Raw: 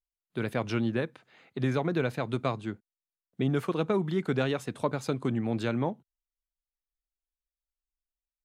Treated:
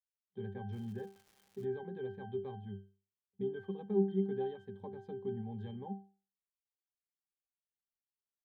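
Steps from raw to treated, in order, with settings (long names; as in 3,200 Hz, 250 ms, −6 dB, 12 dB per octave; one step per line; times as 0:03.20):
notch filter 1,500 Hz, Q 6.1
resonances in every octave G, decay 0.36 s
0:00.72–0:01.64: surface crackle 360 per second −58 dBFS
level +5 dB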